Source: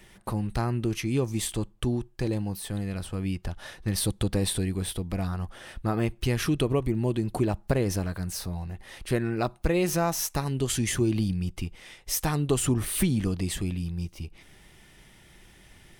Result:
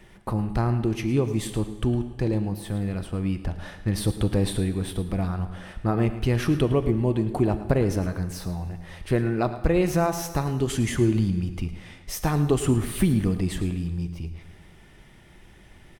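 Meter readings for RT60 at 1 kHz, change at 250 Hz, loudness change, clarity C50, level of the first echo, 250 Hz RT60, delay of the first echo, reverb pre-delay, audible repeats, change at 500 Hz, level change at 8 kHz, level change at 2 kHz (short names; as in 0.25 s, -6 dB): 1.4 s, +3.5 dB, +3.0 dB, 10.5 dB, -15.0 dB, 1.5 s, 0.109 s, 23 ms, 1, +3.5 dB, -5.0 dB, +1.0 dB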